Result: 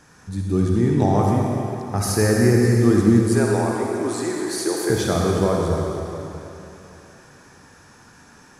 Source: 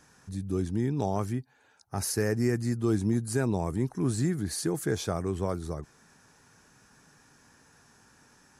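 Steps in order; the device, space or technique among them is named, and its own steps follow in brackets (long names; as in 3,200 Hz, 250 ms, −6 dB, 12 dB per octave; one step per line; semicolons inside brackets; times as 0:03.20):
0:03.31–0:04.90: high-pass filter 340 Hz 24 dB per octave
swimming-pool hall (convolution reverb RT60 3.2 s, pre-delay 44 ms, DRR −1.5 dB; high-shelf EQ 4,800 Hz −5 dB)
level +8 dB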